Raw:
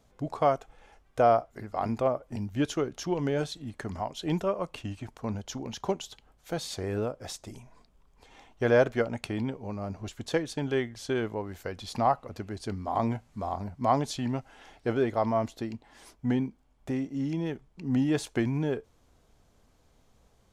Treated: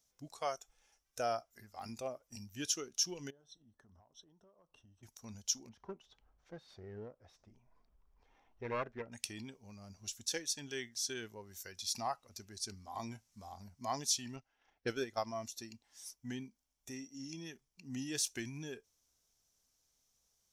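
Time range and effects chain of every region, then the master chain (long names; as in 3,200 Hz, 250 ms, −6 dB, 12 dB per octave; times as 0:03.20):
0:03.30–0:05.03: moving average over 19 samples + downward compressor 12 to 1, threshold −41 dBFS
0:05.69–0:09.12: phase distortion by the signal itself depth 0.45 ms + low-pass filter 1,300 Hz + upward compression, threshold −41 dBFS
0:14.36–0:15.34: low-pass that shuts in the quiet parts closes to 1,500 Hz, open at −25.5 dBFS + transient designer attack +8 dB, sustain −7 dB
whole clip: first-order pre-emphasis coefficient 0.9; noise reduction from a noise print of the clip's start 8 dB; parametric band 5,700 Hz +10.5 dB 0.35 octaves; level +3.5 dB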